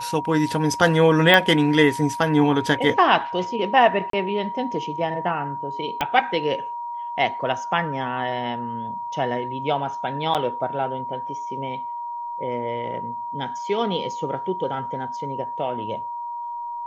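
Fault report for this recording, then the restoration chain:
whistle 950 Hz −28 dBFS
0:01.34: click −4 dBFS
0:04.10–0:04.13: drop-out 33 ms
0:06.01: click −8 dBFS
0:10.34–0:10.35: drop-out 7.5 ms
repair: click removal
notch filter 950 Hz, Q 30
repair the gap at 0:04.10, 33 ms
repair the gap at 0:10.34, 7.5 ms

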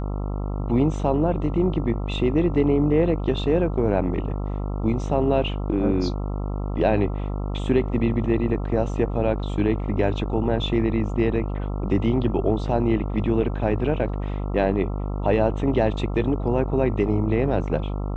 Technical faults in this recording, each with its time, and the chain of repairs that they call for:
mains buzz 50 Hz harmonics 27 −27 dBFS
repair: hum removal 50 Hz, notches 27

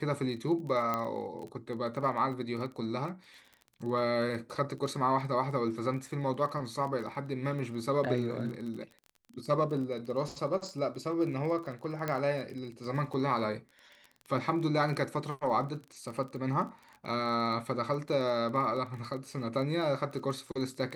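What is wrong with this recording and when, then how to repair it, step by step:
surface crackle 22 per second −39 dBFS
0:00.94: click −18 dBFS
0:12.08: click −19 dBFS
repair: click removal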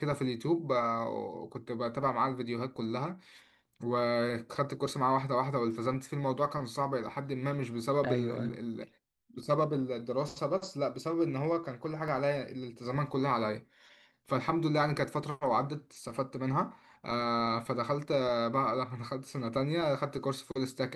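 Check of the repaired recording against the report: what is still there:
0:12.08: click

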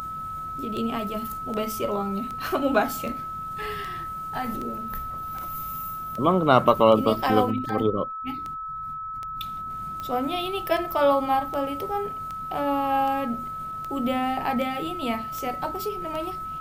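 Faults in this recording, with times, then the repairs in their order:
scratch tick 78 rpm −21 dBFS
whistle 1,300 Hz −31 dBFS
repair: click removal
notch filter 1,300 Hz, Q 30

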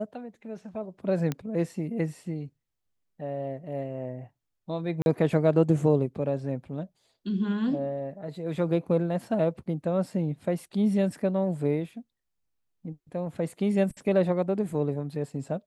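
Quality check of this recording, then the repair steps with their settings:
0:01.32: click −16 dBFS
0:05.02–0:05.06: drop-out 41 ms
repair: click removal
repair the gap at 0:05.02, 41 ms

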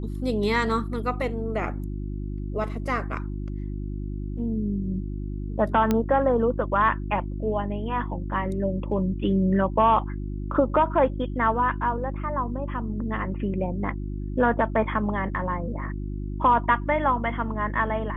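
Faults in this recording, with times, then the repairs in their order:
mains hum 50 Hz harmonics 7 −31 dBFS
0:05.91: click −10 dBFS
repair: click removal
hum removal 50 Hz, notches 7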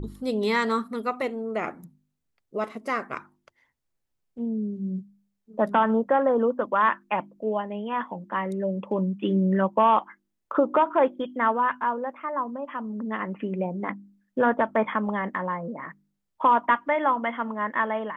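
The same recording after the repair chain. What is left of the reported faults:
none of them is left

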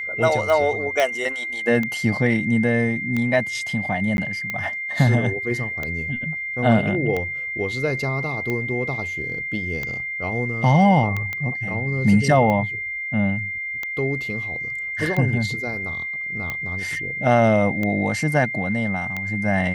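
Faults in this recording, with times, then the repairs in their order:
scratch tick 45 rpm
whistle 2,100 Hz −26 dBFS
0:01.00: click −7 dBFS
0:04.17–0:04.18: drop-out 11 ms
0:11.33: click −14 dBFS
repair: click removal
notch filter 2,100 Hz, Q 30
repair the gap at 0:04.17, 11 ms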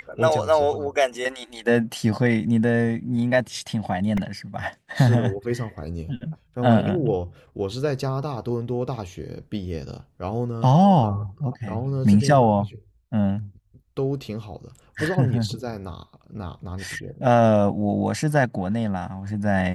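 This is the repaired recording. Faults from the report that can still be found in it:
none of them is left

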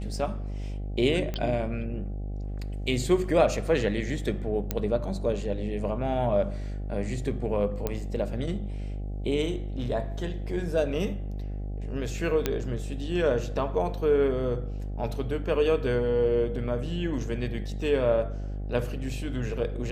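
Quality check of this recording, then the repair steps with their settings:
mains buzz 50 Hz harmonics 16 −33 dBFS
0:01.34: click −18 dBFS
0:04.71: click −12 dBFS
0:07.87: click −14 dBFS
0:12.46: click −10 dBFS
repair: click removal
hum removal 50 Hz, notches 16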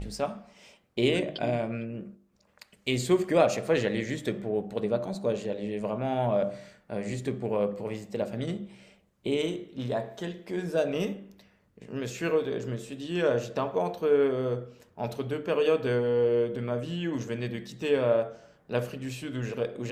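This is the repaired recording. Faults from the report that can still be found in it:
none of them is left

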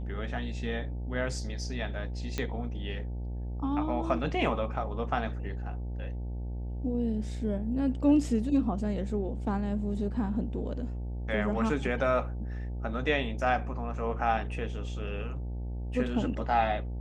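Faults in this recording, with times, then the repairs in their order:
mains buzz 60 Hz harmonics 15 −35 dBFS
0:02.38: click −17 dBFS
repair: click removal
hum removal 60 Hz, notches 15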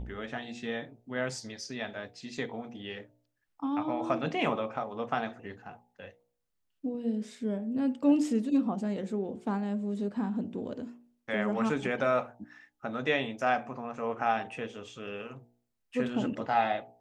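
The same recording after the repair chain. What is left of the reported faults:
none of them is left

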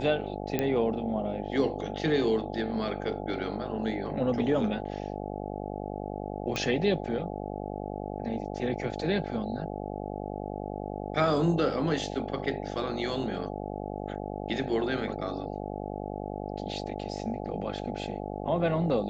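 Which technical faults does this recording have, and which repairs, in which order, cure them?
mains buzz 50 Hz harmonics 17 −36 dBFS
0:00.59: click −13 dBFS
0:06.56: click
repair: click removal
hum removal 50 Hz, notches 17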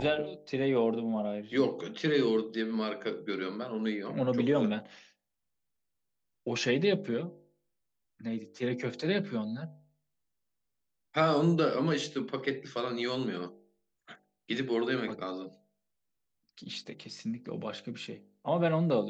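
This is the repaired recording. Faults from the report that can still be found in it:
none of them is left

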